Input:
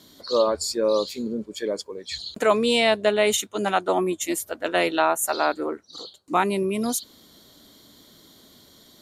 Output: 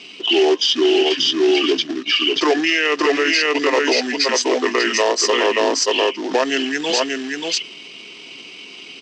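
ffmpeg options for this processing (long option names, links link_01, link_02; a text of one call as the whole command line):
ffmpeg -i in.wav -filter_complex "[0:a]equalizer=frequency=2200:width_type=o:width=0.42:gain=-8,aecho=1:1:5.2:0.35,acrossover=split=560|930[link_01][link_02][link_03];[link_01]acompressor=threshold=-36dB:ratio=20[link_04];[link_04][link_02][link_03]amix=inputs=3:normalize=0,acrusher=bits=3:mode=log:mix=0:aa=0.000001,aeval=exprs='val(0)+0.00398*(sin(2*PI*60*n/s)+sin(2*PI*2*60*n/s)/2+sin(2*PI*3*60*n/s)/3+sin(2*PI*4*60*n/s)/4+sin(2*PI*5*60*n/s)/5)':channel_layout=same,highpass=frequency=430:width=0.5412,highpass=frequency=430:width=1.3066,equalizer=frequency=490:width_type=q:width=4:gain=5,equalizer=frequency=840:width_type=q:width=4:gain=-4,equalizer=frequency=1200:width_type=q:width=4:gain=-7,equalizer=frequency=2600:width_type=q:width=4:gain=6,equalizer=frequency=4400:width_type=q:width=4:gain=6,equalizer=frequency=7900:width_type=q:width=4:gain=4,lowpass=frequency=8900:width=0.5412,lowpass=frequency=8900:width=1.3066,asplit=2[link_05][link_06];[link_06]aecho=0:1:583:0.668[link_07];[link_05][link_07]amix=inputs=2:normalize=0,asetrate=30296,aresample=44100,atempo=1.45565,alimiter=level_in=19dB:limit=-1dB:release=50:level=0:latency=1,volume=-6.5dB" out.wav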